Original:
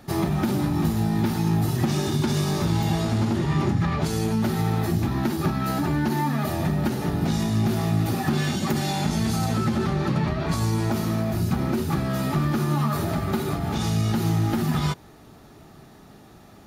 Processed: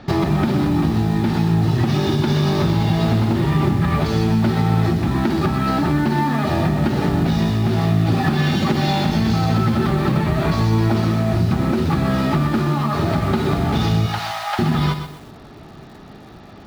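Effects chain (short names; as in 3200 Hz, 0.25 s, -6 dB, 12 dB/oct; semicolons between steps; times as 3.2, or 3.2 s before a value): LPF 4800 Hz 24 dB/oct; in parallel at -11 dB: bit-crush 6-bit; 14.06–14.59 on the sum: steep high-pass 640 Hz 48 dB/oct; compressor, threshold -23 dBFS, peak gain reduction 8 dB; lo-fi delay 0.126 s, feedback 35%, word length 8-bit, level -8.5 dB; gain +8 dB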